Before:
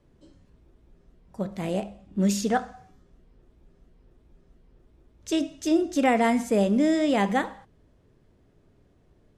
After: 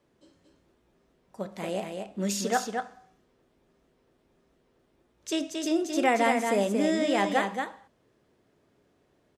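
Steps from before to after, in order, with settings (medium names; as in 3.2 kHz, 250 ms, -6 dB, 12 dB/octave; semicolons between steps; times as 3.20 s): high-pass 460 Hz 6 dB/octave; on a send: delay 228 ms -5 dB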